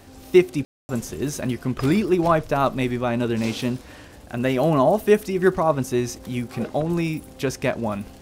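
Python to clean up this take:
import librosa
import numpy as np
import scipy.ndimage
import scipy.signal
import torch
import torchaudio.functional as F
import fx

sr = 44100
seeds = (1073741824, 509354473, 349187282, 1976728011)

y = fx.fix_ambience(x, sr, seeds[0], print_start_s=3.8, print_end_s=4.3, start_s=0.65, end_s=0.89)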